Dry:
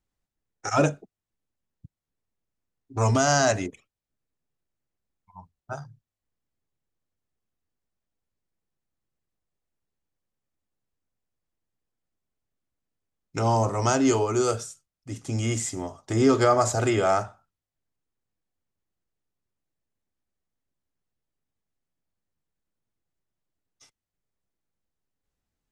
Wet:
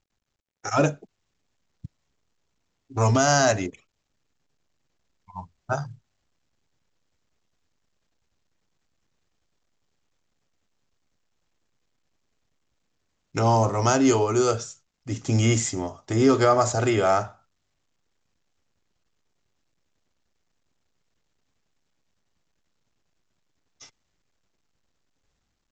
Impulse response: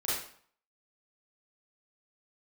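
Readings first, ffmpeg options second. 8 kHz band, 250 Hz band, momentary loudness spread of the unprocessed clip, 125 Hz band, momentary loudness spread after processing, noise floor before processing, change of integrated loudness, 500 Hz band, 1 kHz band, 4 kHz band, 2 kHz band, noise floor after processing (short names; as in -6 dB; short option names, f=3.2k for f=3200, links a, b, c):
+1.5 dB, +2.0 dB, 19 LU, +2.5 dB, 16 LU, under -85 dBFS, +1.5 dB, +1.5 dB, +1.5 dB, +2.0 dB, +1.5 dB, -76 dBFS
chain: -af "dynaudnorm=f=220:g=5:m=16dB,volume=-7dB" -ar 16000 -c:a pcm_mulaw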